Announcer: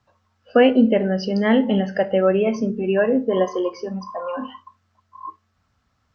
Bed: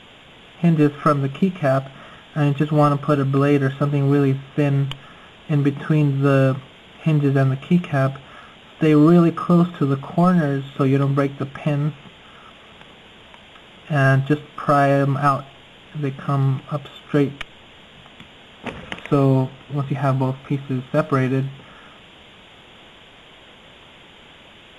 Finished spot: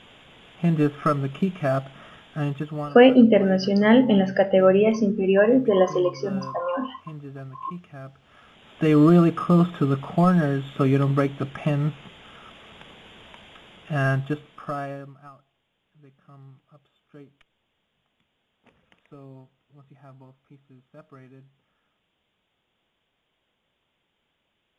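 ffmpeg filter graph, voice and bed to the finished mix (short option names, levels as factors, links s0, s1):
-filter_complex "[0:a]adelay=2400,volume=1.12[s0];[1:a]volume=4.73,afade=t=out:st=2.2:d=0.75:silence=0.158489,afade=t=in:st=8.17:d=0.84:silence=0.11885,afade=t=out:st=13.36:d=1.79:silence=0.0473151[s1];[s0][s1]amix=inputs=2:normalize=0"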